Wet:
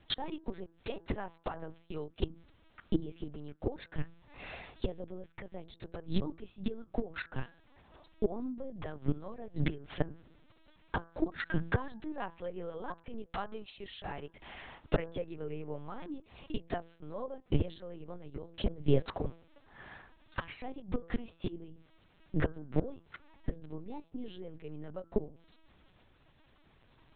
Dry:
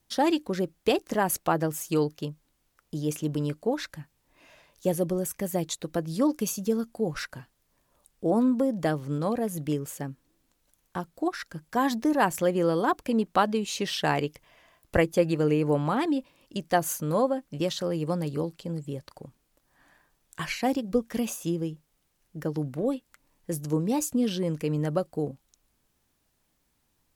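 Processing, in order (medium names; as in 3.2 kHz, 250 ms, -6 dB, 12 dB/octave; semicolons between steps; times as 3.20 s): inverted gate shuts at -24 dBFS, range -26 dB; de-hum 165.4 Hz, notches 10; LPC vocoder at 8 kHz pitch kept; trim +10.5 dB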